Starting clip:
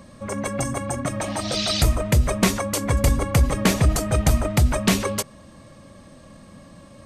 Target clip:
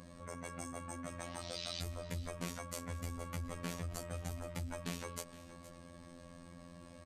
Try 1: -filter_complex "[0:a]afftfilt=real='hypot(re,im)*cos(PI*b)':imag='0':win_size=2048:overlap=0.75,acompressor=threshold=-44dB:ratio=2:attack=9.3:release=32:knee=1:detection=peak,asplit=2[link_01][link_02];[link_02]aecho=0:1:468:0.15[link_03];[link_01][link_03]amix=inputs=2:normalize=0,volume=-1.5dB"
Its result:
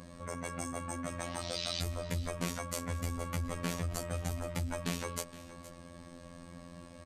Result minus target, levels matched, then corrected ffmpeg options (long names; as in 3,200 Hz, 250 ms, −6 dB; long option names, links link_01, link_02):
downward compressor: peak gain reduction −6 dB
-filter_complex "[0:a]afftfilt=real='hypot(re,im)*cos(PI*b)':imag='0':win_size=2048:overlap=0.75,acompressor=threshold=-56dB:ratio=2:attack=9.3:release=32:knee=1:detection=peak,asplit=2[link_01][link_02];[link_02]aecho=0:1:468:0.15[link_03];[link_01][link_03]amix=inputs=2:normalize=0,volume=-1.5dB"